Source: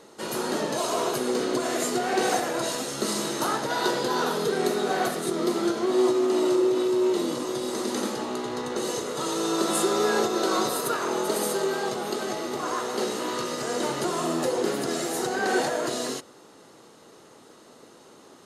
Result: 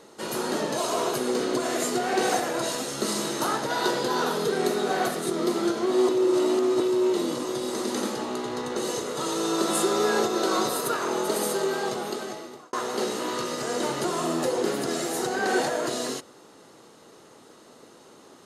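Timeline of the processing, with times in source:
0:06.09–0:06.80: reverse
0:11.97–0:12.73: fade out

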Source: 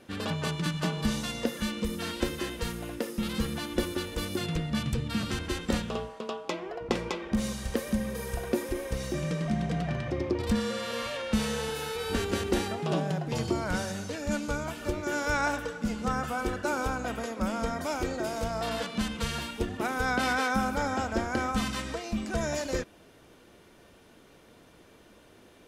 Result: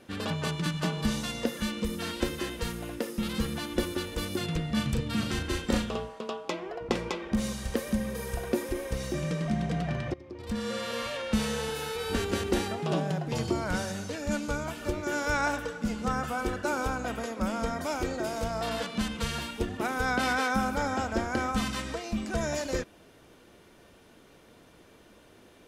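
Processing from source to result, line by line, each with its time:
0:04.66–0:05.94: double-tracking delay 37 ms −5.5 dB
0:10.14–0:10.74: fade in quadratic, from −18.5 dB

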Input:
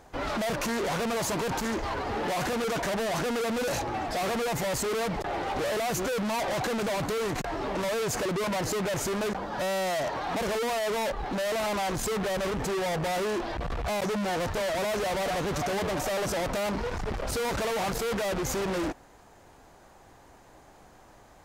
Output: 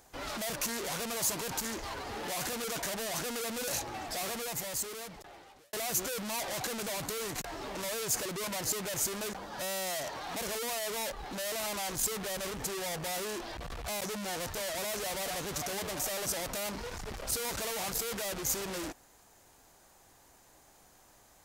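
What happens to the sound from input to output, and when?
0:04.16–0:05.73: fade out
whole clip: first-order pre-emphasis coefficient 0.8; level +4 dB

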